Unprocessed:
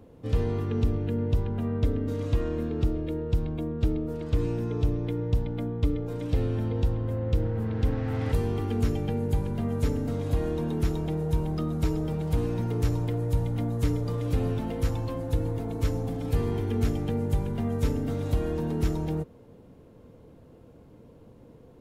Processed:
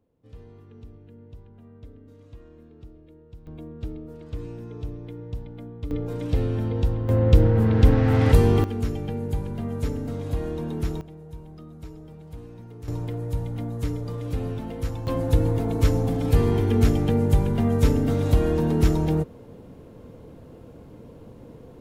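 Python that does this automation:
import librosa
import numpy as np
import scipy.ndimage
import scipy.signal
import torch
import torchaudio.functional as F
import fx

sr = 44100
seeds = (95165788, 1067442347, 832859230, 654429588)

y = fx.gain(x, sr, db=fx.steps((0.0, -19.5), (3.47, -8.0), (5.91, 2.5), (7.09, 10.0), (8.64, -1.0), (11.01, -14.0), (12.88, -2.0), (15.07, 7.0)))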